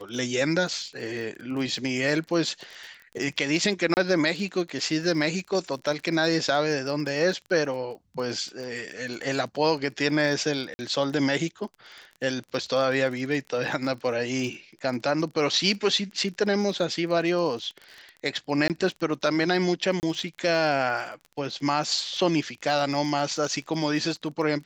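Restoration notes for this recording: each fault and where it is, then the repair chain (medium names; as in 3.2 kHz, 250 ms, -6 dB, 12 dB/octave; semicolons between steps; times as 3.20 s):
crackle 27 per s -34 dBFS
3.94–3.97 s: dropout 29 ms
10.74–10.79 s: dropout 50 ms
18.68–18.70 s: dropout 18 ms
20.00–20.03 s: dropout 29 ms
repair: de-click; interpolate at 3.94 s, 29 ms; interpolate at 10.74 s, 50 ms; interpolate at 18.68 s, 18 ms; interpolate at 20.00 s, 29 ms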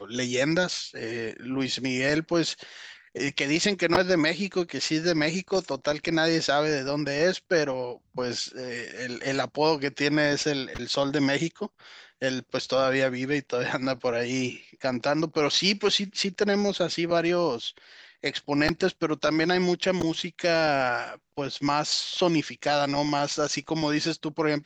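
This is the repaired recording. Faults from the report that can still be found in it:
nothing left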